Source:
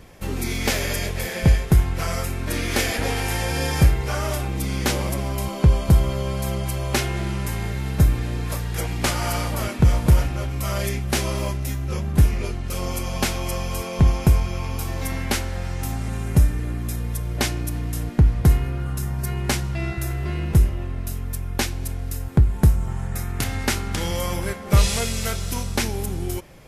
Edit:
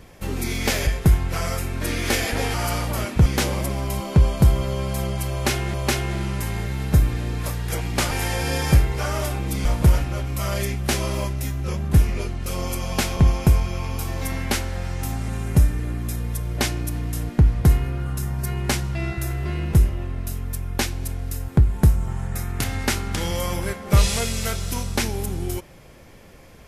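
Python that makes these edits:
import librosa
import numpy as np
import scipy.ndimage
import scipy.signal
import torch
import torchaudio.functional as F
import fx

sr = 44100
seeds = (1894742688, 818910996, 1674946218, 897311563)

y = fx.edit(x, sr, fx.cut(start_s=0.87, length_s=0.66),
    fx.swap(start_s=3.2, length_s=1.54, other_s=9.17, other_length_s=0.72),
    fx.repeat(start_s=6.8, length_s=0.42, count=2),
    fx.cut(start_s=13.41, length_s=0.56), tone=tone)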